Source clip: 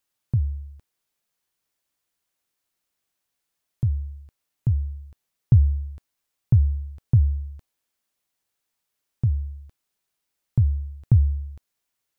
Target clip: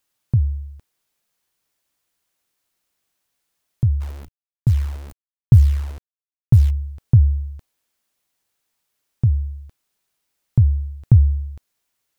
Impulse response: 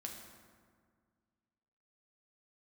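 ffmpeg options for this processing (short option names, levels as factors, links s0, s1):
-filter_complex "[0:a]asplit=3[s0][s1][s2];[s0]afade=t=out:st=4:d=0.02[s3];[s1]acrusher=bits=8:dc=4:mix=0:aa=0.000001,afade=t=in:st=4:d=0.02,afade=t=out:st=6.69:d=0.02[s4];[s2]afade=t=in:st=6.69:d=0.02[s5];[s3][s4][s5]amix=inputs=3:normalize=0,volume=1.78"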